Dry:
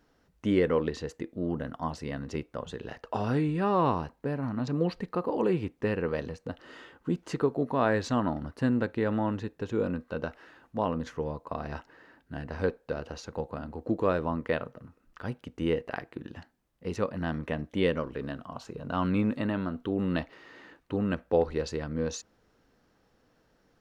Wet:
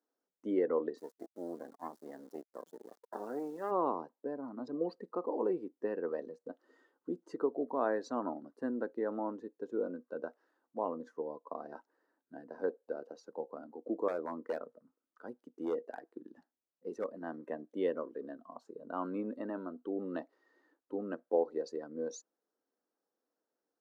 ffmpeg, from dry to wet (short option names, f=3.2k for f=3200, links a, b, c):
-filter_complex "[0:a]asplit=3[a][b][c];[a]afade=t=out:st=0.97:d=0.02[d];[b]acrusher=bits=4:dc=4:mix=0:aa=0.000001,afade=t=in:st=0.97:d=0.02,afade=t=out:st=3.7:d=0.02[e];[c]afade=t=in:st=3.7:d=0.02[f];[d][e][f]amix=inputs=3:normalize=0,asettb=1/sr,asplit=3[g][h][i];[g]atrim=end=14.084[j];[h]atrim=start=14.08:end=17.18,asetpts=PTS-STARTPTS,afade=t=in:d=0.004:c=qsin,afade=t=out:st=3.096:d=0.004:c=qsin,aeval=exprs='0.0841*(abs(mod(val(0)/0.0841+3,4)-2)-1)':c=same[k];[i]atrim=start=17.176[l];[j][k]acrossfade=d=0.004:c1=hsin:c2=qsin[m];[m][l]acrossfade=d=0.004:c1=qsin:c2=hsin,afftdn=nr=14:nf=-38,highpass=f=280:w=0.5412,highpass=f=280:w=1.3066,equalizer=f=2.6k:t=o:w=1.1:g=-15,volume=-4.5dB"